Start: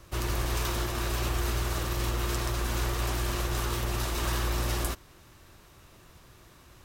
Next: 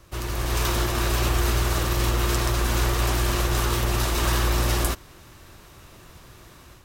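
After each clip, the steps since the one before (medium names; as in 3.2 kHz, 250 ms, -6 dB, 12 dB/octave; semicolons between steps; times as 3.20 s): level rider gain up to 7 dB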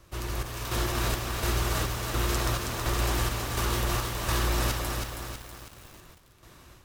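square tremolo 1.4 Hz, depth 60%, duty 60%; bit-crushed delay 322 ms, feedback 55%, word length 7-bit, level -4 dB; trim -4 dB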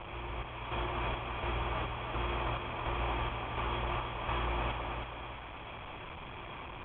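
one-bit delta coder 64 kbps, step -31 dBFS; rippled Chebyshev low-pass 3.4 kHz, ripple 9 dB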